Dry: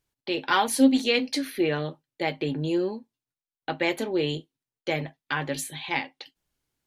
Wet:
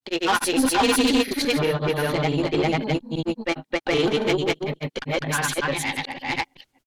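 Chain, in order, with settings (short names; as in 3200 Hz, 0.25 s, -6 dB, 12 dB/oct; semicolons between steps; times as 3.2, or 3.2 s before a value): reverse delay 0.203 s, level -0.5 dB; tube stage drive 22 dB, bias 0.4; grains, spray 0.345 s, pitch spread up and down by 0 st; gain +8 dB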